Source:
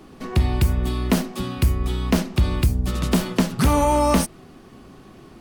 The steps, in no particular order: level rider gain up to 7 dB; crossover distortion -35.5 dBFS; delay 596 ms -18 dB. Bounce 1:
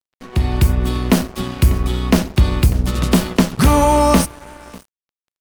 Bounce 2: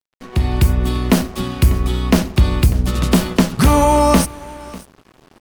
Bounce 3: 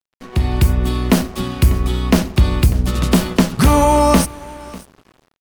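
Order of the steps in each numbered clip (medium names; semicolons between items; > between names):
delay > crossover distortion > level rider; delay > level rider > crossover distortion; level rider > delay > crossover distortion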